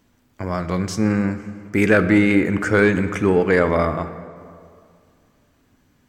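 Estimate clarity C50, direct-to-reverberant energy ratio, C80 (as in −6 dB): 12.0 dB, 10.5 dB, 13.0 dB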